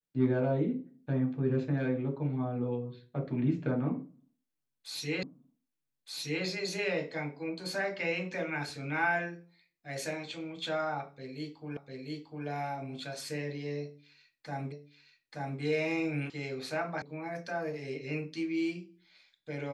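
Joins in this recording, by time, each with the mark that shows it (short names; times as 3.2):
5.23 repeat of the last 1.22 s
11.77 repeat of the last 0.7 s
14.72 repeat of the last 0.88 s
16.3 sound cut off
17.02 sound cut off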